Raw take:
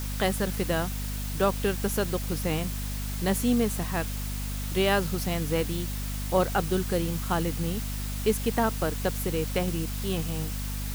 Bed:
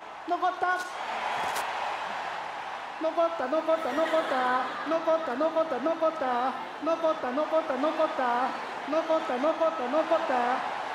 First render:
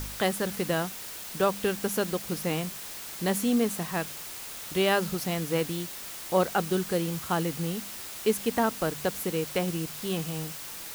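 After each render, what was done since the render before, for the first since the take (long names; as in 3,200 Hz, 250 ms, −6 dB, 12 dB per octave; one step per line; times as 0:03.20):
hum removal 50 Hz, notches 5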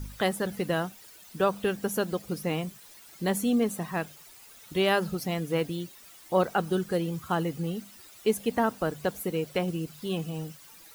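broadband denoise 14 dB, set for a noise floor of −40 dBFS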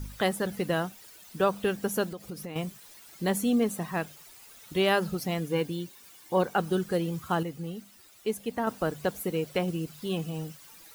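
0:02.08–0:02.56: downward compressor 5 to 1, threshold −35 dBFS
0:05.48–0:06.55: notch comb filter 650 Hz
0:07.43–0:08.67: clip gain −5 dB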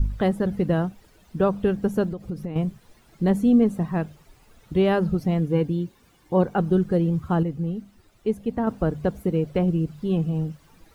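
spectral tilt −4 dB per octave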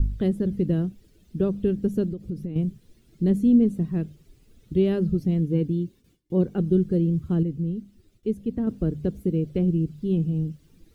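noise gate with hold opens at −47 dBFS
drawn EQ curve 370 Hz 0 dB, 860 Hz −20 dB, 3,300 Hz −6 dB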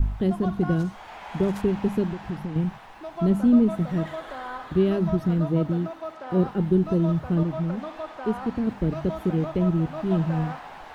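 mix in bed −9 dB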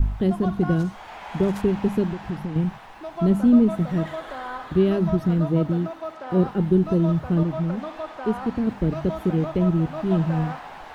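level +2 dB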